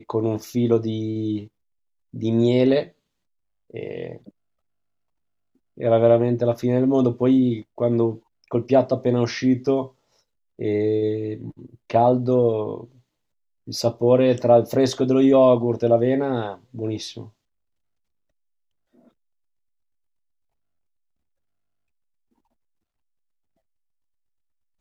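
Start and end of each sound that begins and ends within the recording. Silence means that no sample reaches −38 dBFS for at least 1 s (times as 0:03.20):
0:05.78–0:17.28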